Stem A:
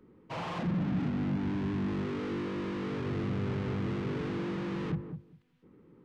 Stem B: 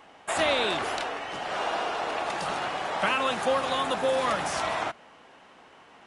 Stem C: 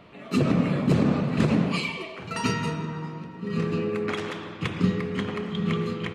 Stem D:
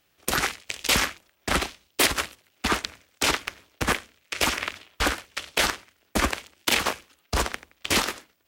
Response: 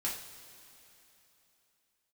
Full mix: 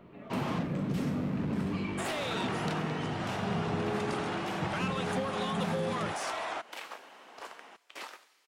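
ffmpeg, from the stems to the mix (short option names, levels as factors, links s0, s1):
-filter_complex "[0:a]volume=1.26[s0];[1:a]highpass=280,adelay=1700,volume=1.06[s1];[2:a]volume=0.631[s2];[3:a]highpass=640,adelay=50,volume=0.188,asplit=2[s3][s4];[s4]volume=0.133[s5];[s0][s1]amix=inputs=2:normalize=0,asoftclip=type=tanh:threshold=0.0794,acompressor=threshold=0.0224:ratio=6,volume=1[s6];[s2][s3]amix=inputs=2:normalize=0,lowpass=f=1100:p=1,alimiter=level_in=1.19:limit=0.0631:level=0:latency=1:release=268,volume=0.841,volume=1[s7];[4:a]atrim=start_sample=2205[s8];[s5][s8]afir=irnorm=-1:irlink=0[s9];[s6][s7][s9]amix=inputs=3:normalize=0"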